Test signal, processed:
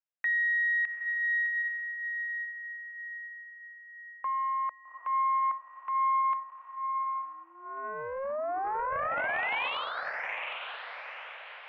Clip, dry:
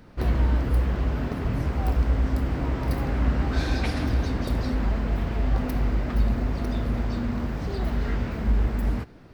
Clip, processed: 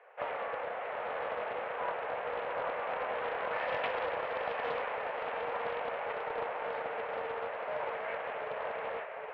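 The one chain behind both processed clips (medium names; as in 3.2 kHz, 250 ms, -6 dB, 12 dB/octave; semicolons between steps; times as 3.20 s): echo that smears into a reverb 828 ms, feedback 46%, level -4.5 dB; mistuned SSB +220 Hz 300–2500 Hz; loudspeaker Doppler distortion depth 0.22 ms; trim -2.5 dB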